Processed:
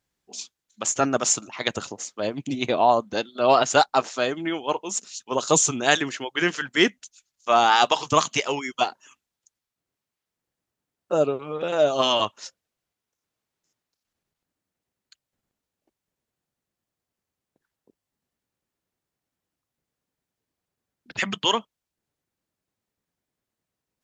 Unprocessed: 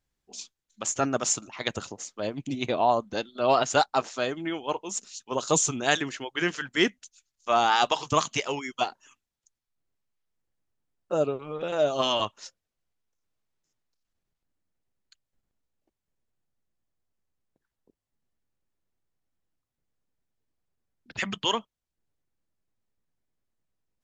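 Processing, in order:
high-pass filter 130 Hz 6 dB per octave
level +4.5 dB

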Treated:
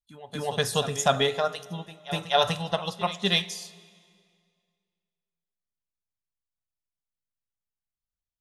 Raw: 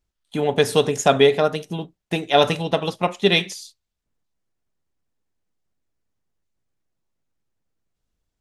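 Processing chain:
parametric band 360 Hz −12 dB 1.2 octaves
noise reduction from a noise print of the clip's start 15 dB
parametric band 2,300 Hz −7.5 dB 0.47 octaves
backwards echo 247 ms −14.5 dB
on a send at −18.5 dB: convolution reverb RT60 2.1 s, pre-delay 51 ms
on the sum: level −2 dB

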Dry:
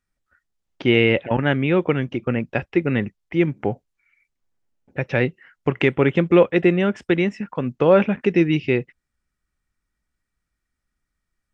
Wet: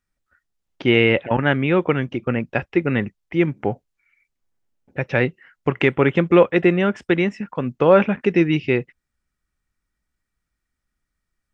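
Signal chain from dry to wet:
dynamic equaliser 1,200 Hz, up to +4 dB, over −30 dBFS, Q 0.94

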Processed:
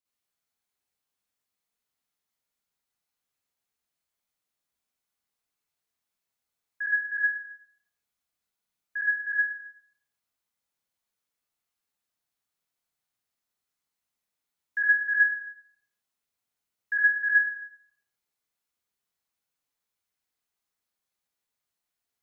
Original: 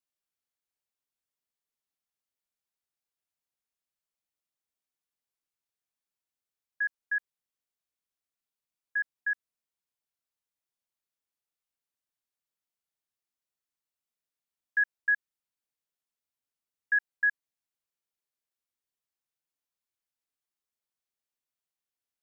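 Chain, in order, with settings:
convolution reverb RT60 0.70 s, pre-delay 38 ms, DRR −9 dB
level −3 dB

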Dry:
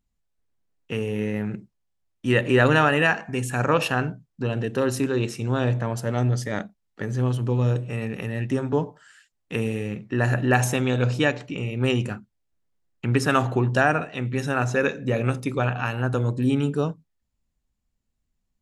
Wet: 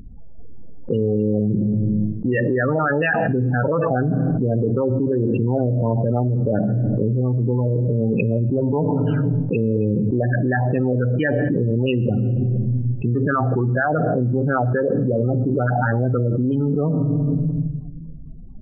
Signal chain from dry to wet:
adaptive Wiener filter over 25 samples
dynamic equaliser 3,200 Hz, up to −6 dB, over −43 dBFS, Q 1.4
brickwall limiter −14.5 dBFS, peak gain reduction 9 dB
auto-filter low-pass saw down 4.3 Hz 540–4,200 Hz
spectral peaks only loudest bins 16
on a send at −21 dB: convolution reverb RT60 1.0 s, pre-delay 12 ms
on the sum: envelope flattener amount 100%
level −1.5 dB

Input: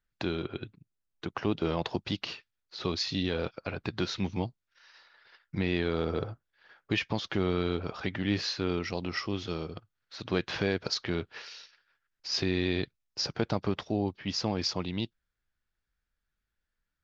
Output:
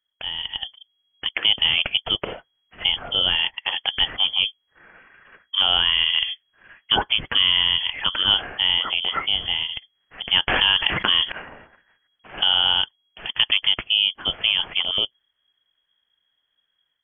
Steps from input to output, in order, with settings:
automatic gain control gain up to 10 dB
voice inversion scrambler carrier 3,300 Hz
0:10.47–0:11.32: envelope flattener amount 70%

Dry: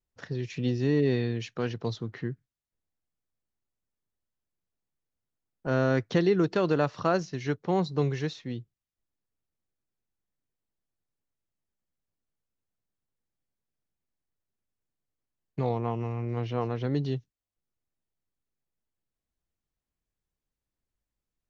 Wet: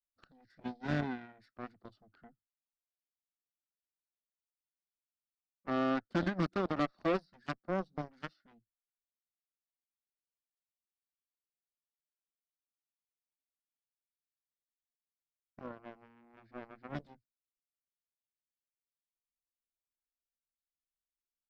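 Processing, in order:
phaser with its sweep stopped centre 660 Hz, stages 8
formants moved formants −4 semitones
harmonic generator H 5 −37 dB, 7 −15 dB, 8 −36 dB, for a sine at −17 dBFS
level −3.5 dB

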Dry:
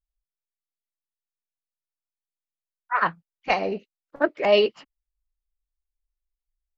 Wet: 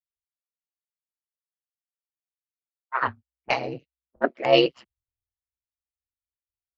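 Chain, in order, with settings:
ring modulation 64 Hz
low-pass that shuts in the quiet parts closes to 370 Hz, open at −26 dBFS
multiband upward and downward expander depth 70%

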